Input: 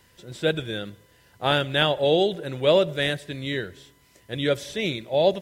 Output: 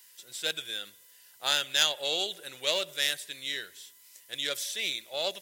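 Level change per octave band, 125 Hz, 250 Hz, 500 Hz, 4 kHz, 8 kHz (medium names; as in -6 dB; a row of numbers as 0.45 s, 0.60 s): -26.5 dB, -21.0 dB, -15.5 dB, +0.5 dB, no reading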